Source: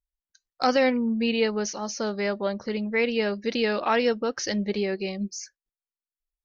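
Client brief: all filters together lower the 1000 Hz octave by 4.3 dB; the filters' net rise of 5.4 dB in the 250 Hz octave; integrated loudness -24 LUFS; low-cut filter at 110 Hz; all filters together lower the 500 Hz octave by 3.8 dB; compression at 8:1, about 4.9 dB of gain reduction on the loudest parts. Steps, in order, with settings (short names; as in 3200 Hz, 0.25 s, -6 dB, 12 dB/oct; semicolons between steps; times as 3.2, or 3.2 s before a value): HPF 110 Hz; bell 250 Hz +7.5 dB; bell 500 Hz -5.5 dB; bell 1000 Hz -4.5 dB; compressor 8:1, threshold -22 dBFS; gain +3.5 dB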